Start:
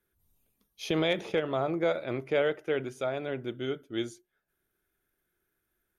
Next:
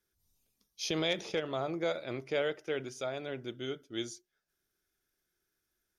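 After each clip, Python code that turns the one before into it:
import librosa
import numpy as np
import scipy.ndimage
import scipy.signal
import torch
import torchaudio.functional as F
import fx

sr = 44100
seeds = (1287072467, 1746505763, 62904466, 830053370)

y = fx.peak_eq(x, sr, hz=5400.0, db=14.5, octaves=1.0)
y = y * 10.0 ** (-5.5 / 20.0)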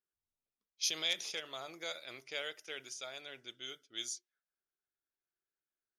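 y = fx.env_lowpass(x, sr, base_hz=940.0, full_db=-33.5)
y = librosa.effects.preemphasis(y, coef=0.97, zi=[0.0])
y = y * 10.0 ** (8.0 / 20.0)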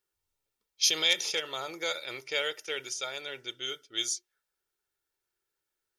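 y = x + 0.46 * np.pad(x, (int(2.2 * sr / 1000.0), 0))[:len(x)]
y = y * 10.0 ** (8.5 / 20.0)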